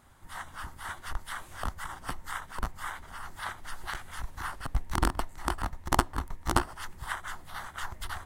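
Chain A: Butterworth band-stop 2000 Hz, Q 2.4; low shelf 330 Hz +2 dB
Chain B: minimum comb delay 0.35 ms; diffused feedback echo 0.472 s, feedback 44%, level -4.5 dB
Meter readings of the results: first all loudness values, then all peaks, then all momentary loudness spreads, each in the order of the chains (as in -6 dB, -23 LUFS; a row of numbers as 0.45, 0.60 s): -35.5, -34.5 LUFS; -3.0, -2.0 dBFS; 13, 14 LU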